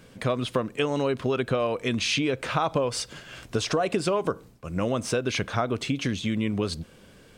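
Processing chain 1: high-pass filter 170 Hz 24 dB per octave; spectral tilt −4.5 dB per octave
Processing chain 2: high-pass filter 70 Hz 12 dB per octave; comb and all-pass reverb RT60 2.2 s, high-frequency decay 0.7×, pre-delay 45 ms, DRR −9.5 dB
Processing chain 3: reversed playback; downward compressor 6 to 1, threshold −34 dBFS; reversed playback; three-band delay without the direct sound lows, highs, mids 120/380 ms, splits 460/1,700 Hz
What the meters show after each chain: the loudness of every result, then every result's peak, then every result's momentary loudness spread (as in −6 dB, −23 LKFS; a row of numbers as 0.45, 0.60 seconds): −22.0, −17.5, −39.0 LKFS; −5.5, −2.0, −23.0 dBFS; 7, 6, 5 LU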